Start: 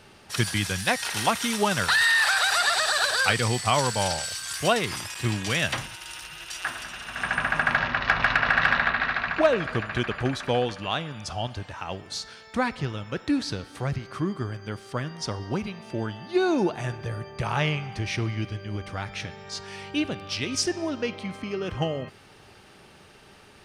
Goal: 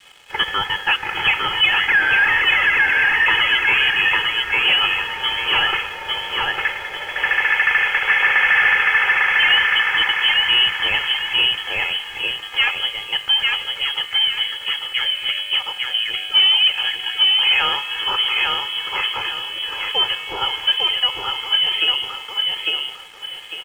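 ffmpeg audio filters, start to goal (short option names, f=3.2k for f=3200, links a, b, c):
-filter_complex "[0:a]bandreject=f=111:t=h:w=4,bandreject=f=222:t=h:w=4,bandreject=f=333:t=h:w=4,bandreject=f=444:t=h:w=4,bandreject=f=555:t=h:w=4,bandreject=f=666:t=h:w=4,bandreject=f=777:t=h:w=4,bandreject=f=888:t=h:w=4,bandreject=f=999:t=h:w=4,bandreject=f=1.11k:t=h:w=4,bandreject=f=1.221k:t=h:w=4,bandreject=f=1.332k:t=h:w=4,bandreject=f=1.443k:t=h:w=4,acrossover=split=160|950[a][b][c];[a]acompressor=threshold=-49dB:ratio=6[d];[d][b][c]amix=inputs=3:normalize=0,aecho=1:1:2.4:0.87,aecho=1:1:851|1702|2553|3404:0.708|0.219|0.068|0.0211,aresample=16000,asoftclip=type=tanh:threshold=-17.5dB,aresample=44100,lowpass=f=2.9k:t=q:w=0.5098,lowpass=f=2.9k:t=q:w=0.6013,lowpass=f=2.9k:t=q:w=0.9,lowpass=f=2.9k:t=q:w=2.563,afreqshift=-3400,aeval=exprs='sgn(val(0))*max(abs(val(0))-0.00237,0)':c=same,adynamicequalizer=threshold=0.00562:dfrequency=530:dqfactor=1.2:tfrequency=530:tqfactor=1.2:attack=5:release=100:ratio=0.375:range=3:mode=cutabove:tftype=bell,volume=8.5dB"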